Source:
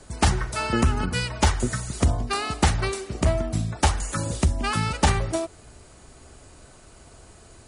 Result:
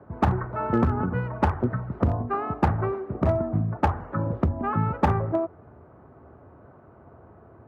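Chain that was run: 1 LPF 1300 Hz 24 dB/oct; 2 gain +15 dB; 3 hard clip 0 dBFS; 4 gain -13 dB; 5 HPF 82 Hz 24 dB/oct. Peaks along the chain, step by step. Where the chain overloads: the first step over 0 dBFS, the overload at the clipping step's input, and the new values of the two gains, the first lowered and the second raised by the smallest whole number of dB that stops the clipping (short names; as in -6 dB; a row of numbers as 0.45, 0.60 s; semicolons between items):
-10.0, +5.0, 0.0, -13.0, -7.5 dBFS; step 2, 5.0 dB; step 2 +10 dB, step 4 -8 dB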